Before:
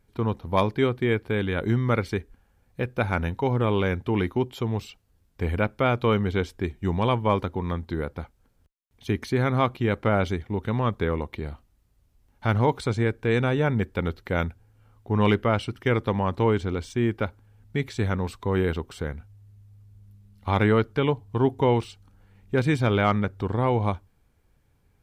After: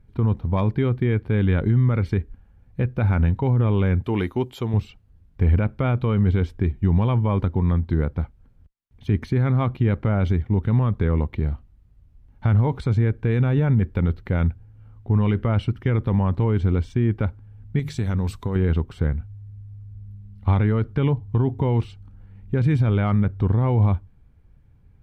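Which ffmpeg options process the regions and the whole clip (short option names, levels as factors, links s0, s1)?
-filter_complex "[0:a]asettb=1/sr,asplit=3[s0][s1][s2];[s0]atrim=end=4.044[s3];[s1]atrim=start=4.04:end=4.74,asetpts=PTS-STARTPTS,afade=t=in:d=0.004:c=qsin,afade=t=out:st=0.696:d=0.004:c=qsin,bass=f=250:g=-10,treble=f=4000:g=11,bandreject=f=5400:w=15[s4];[s2]atrim=start=4.736[s5];[s3][s4]acrossfade=d=0.004:c1=hsin:c2=qsin[s6];[s6][s5]acrossfade=d=0.004:c1=qsin:c2=hsin,asettb=1/sr,asplit=3[s7][s8][s9];[s7]atrim=end=17.794[s10];[s8]atrim=start=17.79:end=18.56,asetpts=PTS-STARTPTS,afade=t=in:d=0.004:c=qsin,afade=t=out:st=0.766:d=0.004:c=qsin,bass=f=250:g=-1,treble=f=4000:g=14,bandreject=f=50:t=h:w=6,bandreject=f=100:t=h:w=6,bandreject=f=150:t=h:w=6,acompressor=threshold=0.0398:ratio=4:attack=3.2:release=140:knee=1:detection=peak[s11];[s9]atrim=start=18.556[s12];[s10][s11]acrossfade=d=0.004:c1=hsin:c2=qsin[s13];[s13][s12]acrossfade=d=0.004:c1=qsin:c2=hsin,bass=f=250:g=12,treble=f=4000:g=-11,alimiter=limit=0.266:level=0:latency=1:release=32"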